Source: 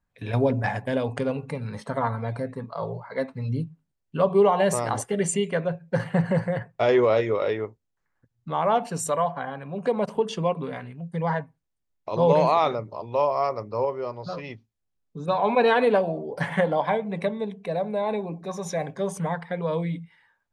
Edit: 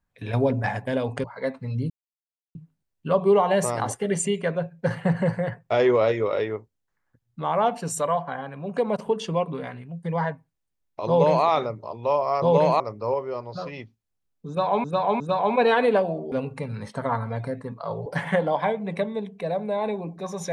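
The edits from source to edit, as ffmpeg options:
ffmpeg -i in.wav -filter_complex "[0:a]asplit=9[link_01][link_02][link_03][link_04][link_05][link_06][link_07][link_08][link_09];[link_01]atrim=end=1.242[link_10];[link_02]atrim=start=2.978:end=3.64,asetpts=PTS-STARTPTS,afade=type=out:start_time=0.658:duration=0.004:curve=hsin,apad=pad_dur=0.65[link_11];[link_03]atrim=start=3.64:end=13.512,asetpts=PTS-STARTPTS,afade=type=in:duration=0.004:curve=hsin[link_12];[link_04]atrim=start=12.168:end=12.552[link_13];[link_05]atrim=start=13.508:end=15.552[link_14];[link_06]atrim=start=15.188:end=15.552[link_15];[link_07]atrim=start=15.188:end=16.312[link_16];[link_08]atrim=start=1.238:end=2.982[link_17];[link_09]atrim=start=16.308[link_18];[link_11][link_12]concat=n=2:v=0:a=1[link_19];[link_10][link_19]acrossfade=duration=0.004:curve1=hsin:curve2=hsin[link_20];[link_20][link_13]acrossfade=duration=0.004:curve1=hsin:curve2=hsin[link_21];[link_21][link_14]acrossfade=duration=0.004:curve1=hsin:curve2=hsin[link_22];[link_22][link_15]acrossfade=duration=0.004:curve1=hsin:curve2=hsin[link_23];[link_23][link_16]acrossfade=duration=0.004:curve1=hsin:curve2=hsin[link_24];[link_24][link_17]acrossfade=duration=0.004:curve1=hsin:curve2=hsin[link_25];[link_25][link_18]acrossfade=duration=0.004:curve1=hsin:curve2=hsin" out.wav

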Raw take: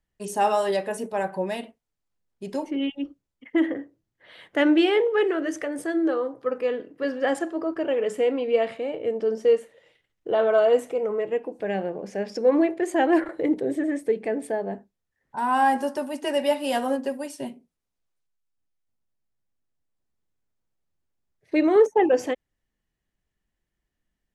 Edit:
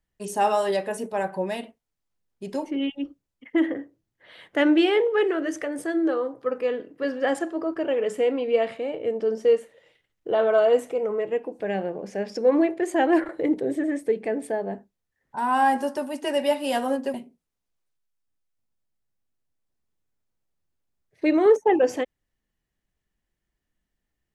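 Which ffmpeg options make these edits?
ffmpeg -i in.wav -filter_complex "[0:a]asplit=2[link_01][link_02];[link_01]atrim=end=17.142[link_03];[link_02]atrim=start=17.438[link_04];[link_03][link_04]acrossfade=duration=0.004:curve1=hsin:curve2=hsin" out.wav

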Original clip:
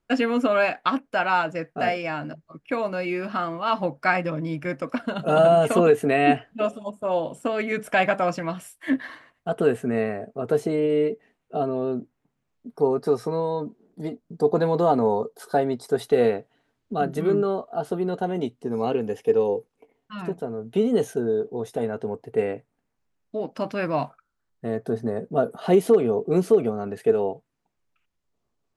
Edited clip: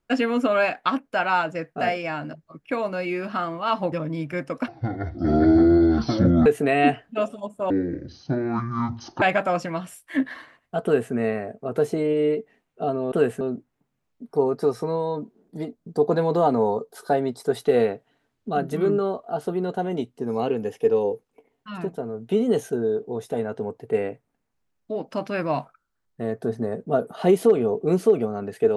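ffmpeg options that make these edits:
ffmpeg -i in.wav -filter_complex "[0:a]asplit=8[link_01][link_02][link_03][link_04][link_05][link_06][link_07][link_08];[link_01]atrim=end=3.922[link_09];[link_02]atrim=start=4.238:end=5.004[link_10];[link_03]atrim=start=5:end=5.89,asetpts=PTS-STARTPTS,asetrate=22050,aresample=44100[link_11];[link_04]atrim=start=5.886:end=7.134[link_12];[link_05]atrim=start=7.13:end=7.95,asetpts=PTS-STARTPTS,asetrate=23814,aresample=44100[link_13];[link_06]atrim=start=7.946:end=11.852[link_14];[link_07]atrim=start=9.568:end=9.862[link_15];[link_08]atrim=start=11.848[link_16];[link_09][link_10]acrossfade=duration=0.004:curve1=hsin:curve2=hsin[link_17];[link_17][link_11]acrossfade=duration=0.004:curve1=hsin:curve2=hsin[link_18];[link_18][link_12]acrossfade=duration=0.004:curve1=hsin:curve2=hsin[link_19];[link_19][link_13]acrossfade=duration=0.004:curve1=hsin:curve2=hsin[link_20];[link_20][link_14]acrossfade=duration=0.004:curve1=hsin:curve2=hsin[link_21];[link_21][link_15]acrossfade=duration=0.004:curve1=hsin:curve2=hsin[link_22];[link_22][link_16]acrossfade=duration=0.004:curve1=hsin:curve2=hsin" out.wav

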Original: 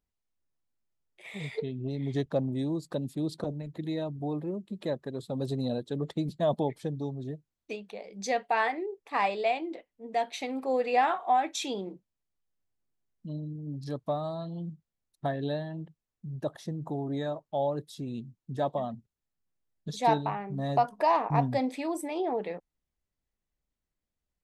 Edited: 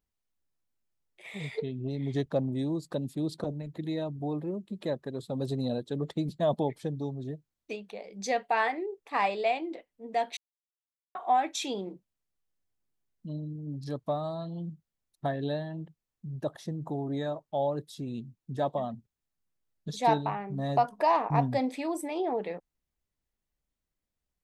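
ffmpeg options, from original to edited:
ffmpeg -i in.wav -filter_complex "[0:a]asplit=3[link_01][link_02][link_03];[link_01]atrim=end=10.37,asetpts=PTS-STARTPTS,afade=type=out:start_time=10.366:duration=0.004:curve=hsin[link_04];[link_02]atrim=start=10.37:end=11.15,asetpts=PTS-STARTPTS,volume=0[link_05];[link_03]atrim=start=11.15,asetpts=PTS-STARTPTS,afade=type=in:duration=0.004:curve=hsin[link_06];[link_04][link_05][link_06]concat=n=3:v=0:a=1" out.wav

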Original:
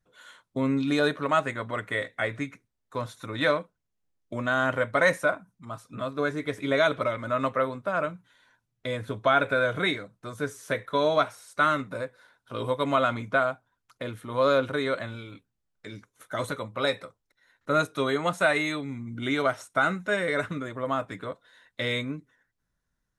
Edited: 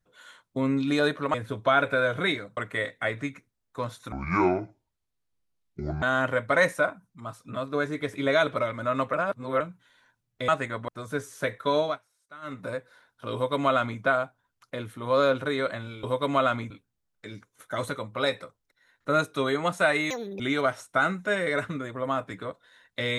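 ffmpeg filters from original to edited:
ffmpeg -i in.wav -filter_complex "[0:a]asplit=15[link_01][link_02][link_03][link_04][link_05][link_06][link_07][link_08][link_09][link_10][link_11][link_12][link_13][link_14][link_15];[link_01]atrim=end=1.342[link_16];[link_02]atrim=start=8.928:end=10.162[link_17];[link_03]atrim=start=1.738:end=3.294[link_18];[link_04]atrim=start=3.29:end=4.47,asetpts=PTS-STARTPTS,asetrate=27342,aresample=44100,atrim=end_sample=83932,asetpts=PTS-STARTPTS[link_19];[link_05]atrim=start=4.466:end=7.582[link_20];[link_06]atrim=start=7.578:end=8.052,asetpts=PTS-STARTPTS,areverse[link_21];[link_07]atrim=start=8.048:end=8.932[link_22];[link_08]atrim=start=1.338:end=1.742[link_23];[link_09]atrim=start=10.158:end=11.27,asetpts=PTS-STARTPTS,afade=type=out:start_time=0.902:duration=0.21:silence=0.0707946[link_24];[link_10]atrim=start=11.27:end=11.69,asetpts=PTS-STARTPTS,volume=-23dB[link_25];[link_11]atrim=start=11.69:end=15.312,asetpts=PTS-STARTPTS,afade=type=in:duration=0.21:silence=0.0707946[link_26];[link_12]atrim=start=12.608:end=13.282[link_27];[link_13]atrim=start=15.308:end=18.714[link_28];[link_14]atrim=start=18.71:end=19.21,asetpts=PTS-STARTPTS,asetrate=74529,aresample=44100,atrim=end_sample=13047,asetpts=PTS-STARTPTS[link_29];[link_15]atrim=start=19.206[link_30];[link_16][link_17]acrossfade=duration=0.004:curve1=hsin:curve2=hsin[link_31];[link_31][link_18]acrossfade=duration=0.004:curve1=hsin:curve2=hsin[link_32];[link_32][link_19]acrossfade=duration=0.004:curve1=hsin:curve2=hsin[link_33];[link_33][link_20]acrossfade=duration=0.004:curve1=hsin:curve2=hsin[link_34];[link_34][link_21]acrossfade=duration=0.004:curve1=hsin:curve2=hsin[link_35];[link_35][link_22]acrossfade=duration=0.004:curve1=hsin:curve2=hsin[link_36];[link_36][link_23]acrossfade=duration=0.004:curve1=hsin:curve2=hsin[link_37];[link_24][link_25][link_26]concat=n=3:v=0:a=1[link_38];[link_37][link_38]acrossfade=duration=0.004:curve1=hsin:curve2=hsin[link_39];[link_39][link_27]acrossfade=duration=0.004:curve1=hsin:curve2=hsin[link_40];[link_40][link_28]acrossfade=duration=0.004:curve1=hsin:curve2=hsin[link_41];[link_41][link_29]acrossfade=duration=0.004:curve1=hsin:curve2=hsin[link_42];[link_42][link_30]acrossfade=duration=0.004:curve1=hsin:curve2=hsin" out.wav

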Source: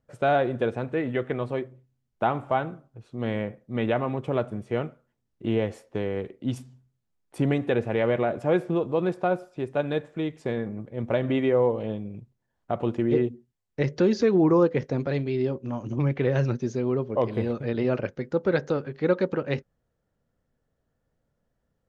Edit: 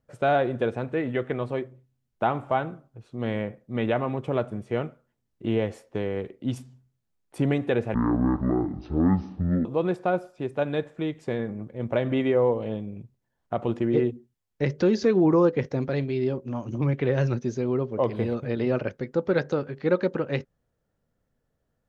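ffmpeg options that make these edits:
ffmpeg -i in.wav -filter_complex "[0:a]asplit=3[link_01][link_02][link_03];[link_01]atrim=end=7.944[link_04];[link_02]atrim=start=7.94:end=8.83,asetpts=PTS-STARTPTS,asetrate=22932,aresample=44100[link_05];[link_03]atrim=start=8.826[link_06];[link_04][link_05]acrossfade=duration=0.004:curve1=hsin:curve2=hsin[link_07];[link_07][link_06]acrossfade=duration=0.004:curve1=hsin:curve2=hsin" out.wav

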